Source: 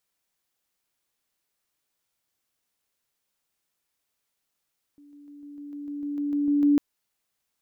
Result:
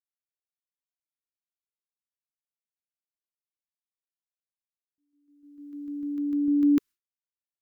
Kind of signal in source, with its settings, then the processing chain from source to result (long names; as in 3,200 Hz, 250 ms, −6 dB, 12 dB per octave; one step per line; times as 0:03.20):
level staircase 289 Hz −49 dBFS, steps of 3 dB, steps 12, 0.15 s 0.00 s
downward expander −37 dBFS
flat-topped bell 660 Hz −16 dB 1.1 octaves